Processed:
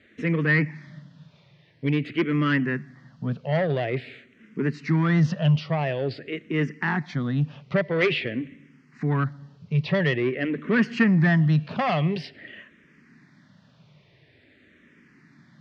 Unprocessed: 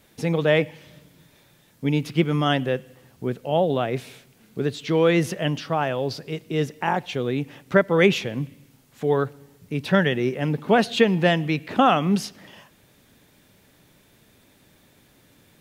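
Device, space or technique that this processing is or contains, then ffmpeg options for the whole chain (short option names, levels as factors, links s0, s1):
barber-pole phaser into a guitar amplifier: -filter_complex "[0:a]asplit=2[s0][s1];[s1]afreqshift=-0.48[s2];[s0][s2]amix=inputs=2:normalize=1,asoftclip=type=tanh:threshold=0.112,highpass=92,equalizer=f=150:t=q:w=4:g=8,equalizer=f=230:t=q:w=4:g=4,equalizer=f=490:t=q:w=4:g=-4,equalizer=f=820:t=q:w=4:g=-7,equalizer=f=1900:t=q:w=4:g=8,equalizer=f=3600:t=q:w=4:g=-5,lowpass=f=4600:w=0.5412,lowpass=f=4600:w=1.3066,volume=1.33"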